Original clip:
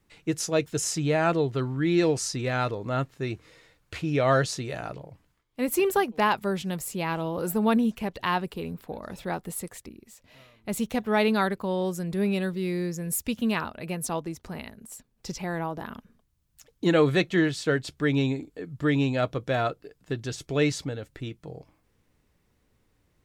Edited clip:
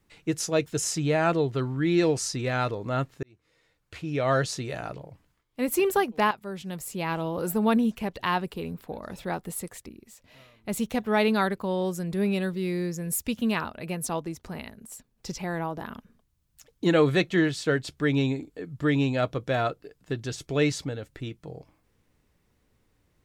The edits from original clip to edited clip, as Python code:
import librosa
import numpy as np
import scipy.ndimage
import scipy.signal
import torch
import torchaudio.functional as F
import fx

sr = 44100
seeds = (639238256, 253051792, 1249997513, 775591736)

y = fx.edit(x, sr, fx.fade_in_span(start_s=3.23, length_s=1.39),
    fx.fade_in_from(start_s=6.31, length_s=0.81, floor_db=-14.0), tone=tone)